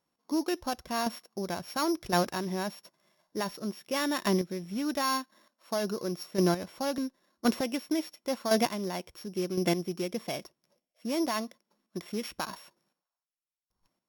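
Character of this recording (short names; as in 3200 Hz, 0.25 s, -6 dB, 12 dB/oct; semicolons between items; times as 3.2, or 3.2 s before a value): a buzz of ramps at a fixed pitch in blocks of 8 samples; chopped level 0.94 Hz, depth 60%, duty 15%; MP3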